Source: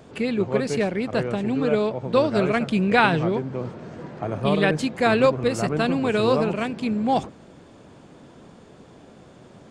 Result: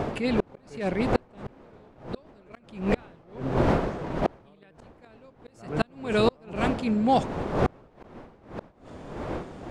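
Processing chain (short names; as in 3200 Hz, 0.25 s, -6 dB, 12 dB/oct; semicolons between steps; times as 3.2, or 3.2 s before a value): wind noise 580 Hz -20 dBFS; flipped gate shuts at -10 dBFS, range -36 dB; attack slew limiter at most 130 dB/s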